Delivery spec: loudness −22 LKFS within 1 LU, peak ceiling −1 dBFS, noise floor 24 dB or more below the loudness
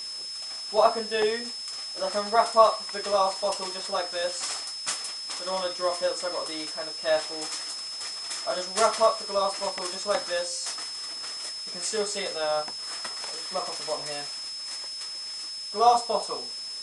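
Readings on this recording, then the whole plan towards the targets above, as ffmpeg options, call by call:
interfering tone 5,200 Hz; level of the tone −34 dBFS; background noise floor −37 dBFS; target noise floor −52 dBFS; integrated loudness −27.5 LKFS; sample peak −4.5 dBFS; target loudness −22.0 LKFS
→ -af "bandreject=frequency=5200:width=30"
-af "afftdn=noise_reduction=15:noise_floor=-37"
-af "volume=5.5dB,alimiter=limit=-1dB:level=0:latency=1"

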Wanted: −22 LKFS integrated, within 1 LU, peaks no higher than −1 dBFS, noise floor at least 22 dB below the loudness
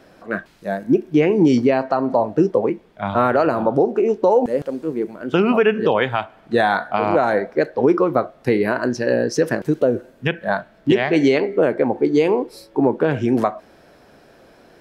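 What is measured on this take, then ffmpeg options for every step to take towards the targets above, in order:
integrated loudness −19.0 LKFS; sample peak −5.5 dBFS; target loudness −22.0 LKFS
→ -af "volume=-3dB"

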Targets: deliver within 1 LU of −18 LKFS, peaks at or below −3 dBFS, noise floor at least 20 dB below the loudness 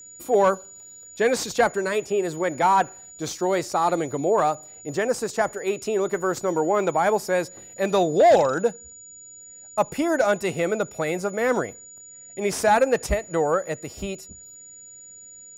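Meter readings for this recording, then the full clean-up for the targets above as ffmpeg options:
interfering tone 6,900 Hz; level of the tone −42 dBFS; integrated loudness −23.5 LKFS; sample peak −9.5 dBFS; target loudness −18.0 LKFS
→ -af "bandreject=frequency=6900:width=30"
-af "volume=5.5dB"

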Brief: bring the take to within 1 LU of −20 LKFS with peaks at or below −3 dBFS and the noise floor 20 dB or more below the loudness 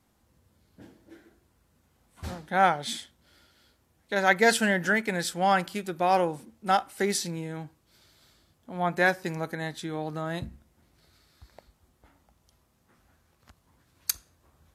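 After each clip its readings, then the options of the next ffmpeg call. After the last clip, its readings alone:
integrated loudness −27.0 LKFS; sample peak −6.5 dBFS; target loudness −20.0 LKFS
→ -af "volume=7dB,alimiter=limit=-3dB:level=0:latency=1"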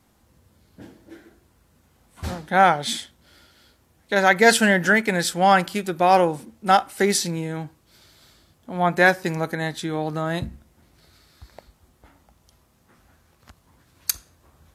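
integrated loudness −20.5 LKFS; sample peak −3.0 dBFS; background noise floor −62 dBFS

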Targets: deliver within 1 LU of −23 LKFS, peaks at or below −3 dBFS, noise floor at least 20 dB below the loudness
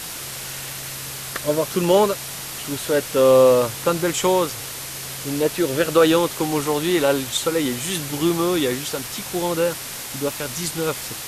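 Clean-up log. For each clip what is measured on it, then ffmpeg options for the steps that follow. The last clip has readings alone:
background noise floor −32 dBFS; target noise floor −41 dBFS; integrated loudness −21.0 LKFS; sample peak −4.5 dBFS; target loudness −23.0 LKFS
→ -af "afftdn=noise_reduction=9:noise_floor=-32"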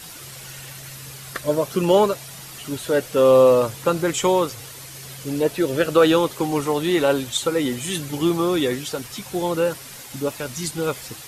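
background noise floor −39 dBFS; target noise floor −41 dBFS
→ -af "afftdn=noise_reduction=6:noise_floor=-39"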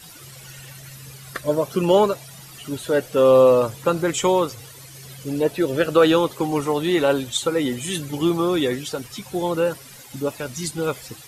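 background noise floor −43 dBFS; integrated loudness −21.0 LKFS; sample peak −4.5 dBFS; target loudness −23.0 LKFS
→ -af "volume=-2dB"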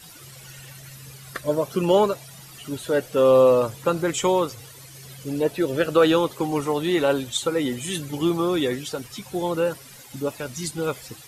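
integrated loudness −23.0 LKFS; sample peak −6.5 dBFS; background noise floor −45 dBFS

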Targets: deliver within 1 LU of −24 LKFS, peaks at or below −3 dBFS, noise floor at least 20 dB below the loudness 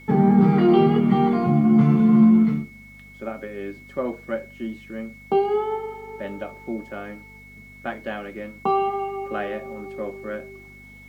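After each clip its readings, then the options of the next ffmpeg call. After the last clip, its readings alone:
mains hum 50 Hz; hum harmonics up to 250 Hz; level of the hum −46 dBFS; interfering tone 2,200 Hz; level of the tone −45 dBFS; integrated loudness −20.5 LKFS; sample peak −4.5 dBFS; target loudness −24.0 LKFS
→ -af "bandreject=frequency=50:width_type=h:width=4,bandreject=frequency=100:width_type=h:width=4,bandreject=frequency=150:width_type=h:width=4,bandreject=frequency=200:width_type=h:width=4,bandreject=frequency=250:width_type=h:width=4"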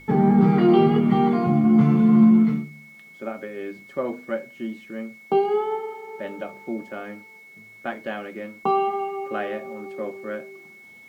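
mains hum none found; interfering tone 2,200 Hz; level of the tone −45 dBFS
→ -af "bandreject=frequency=2200:width=30"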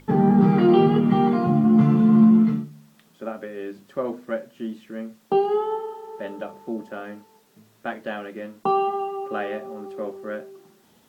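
interfering tone none found; integrated loudness −20.5 LKFS; sample peak −5.0 dBFS; target loudness −24.0 LKFS
→ -af "volume=-3.5dB"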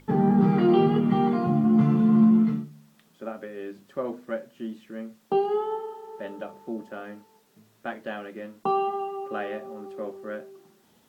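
integrated loudness −24.0 LKFS; sample peak −8.5 dBFS; background noise floor −62 dBFS

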